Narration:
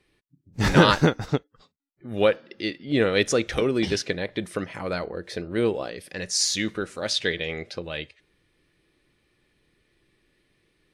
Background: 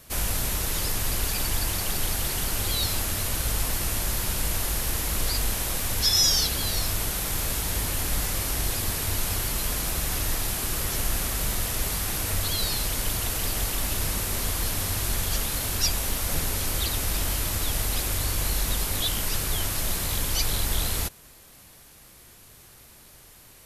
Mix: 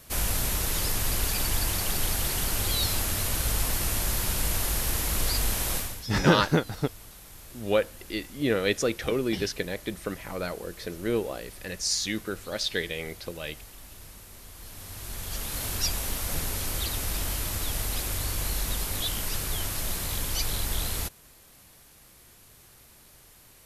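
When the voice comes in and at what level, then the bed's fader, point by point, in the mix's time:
5.50 s, −4.0 dB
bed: 0:05.77 −0.5 dB
0:06.09 −19.5 dB
0:14.49 −19.5 dB
0:15.63 −3.5 dB

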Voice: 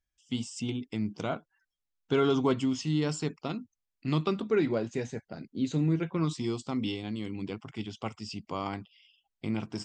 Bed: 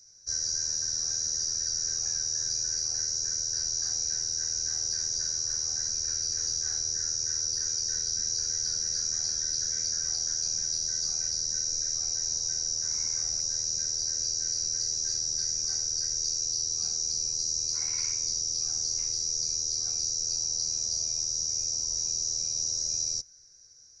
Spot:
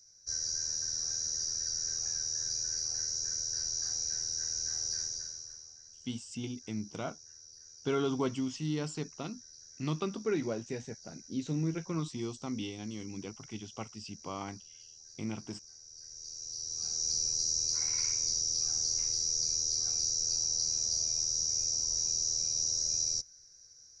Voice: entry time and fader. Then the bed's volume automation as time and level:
5.75 s, −5.5 dB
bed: 0:05.00 −4.5 dB
0:05.79 −23.5 dB
0:15.79 −23.5 dB
0:17.10 −1.5 dB

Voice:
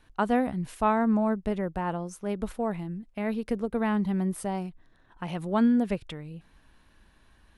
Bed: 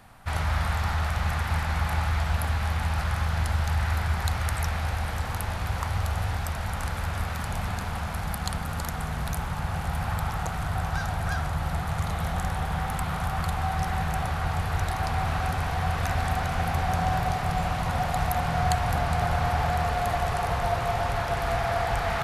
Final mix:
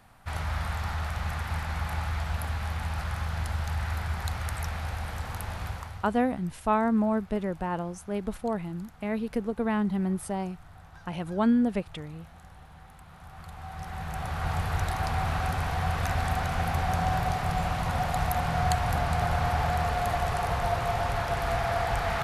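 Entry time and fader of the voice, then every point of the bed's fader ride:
5.85 s, −0.5 dB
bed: 0:05.67 −5 dB
0:06.25 −22 dB
0:13.05 −22 dB
0:14.51 −1.5 dB

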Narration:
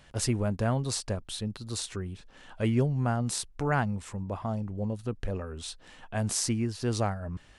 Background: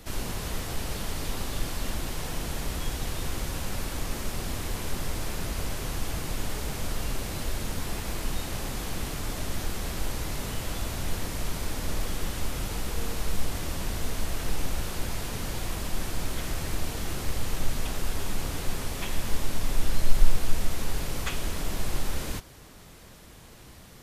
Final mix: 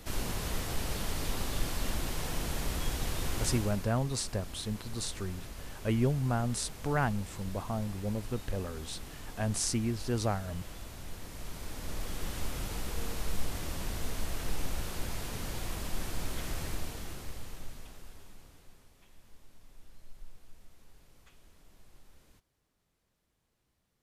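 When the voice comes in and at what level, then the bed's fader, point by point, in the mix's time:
3.25 s, −2.5 dB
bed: 0:03.50 −2 dB
0:03.93 −13 dB
0:11.17 −13 dB
0:12.36 −5 dB
0:16.64 −5 dB
0:18.93 −29.5 dB

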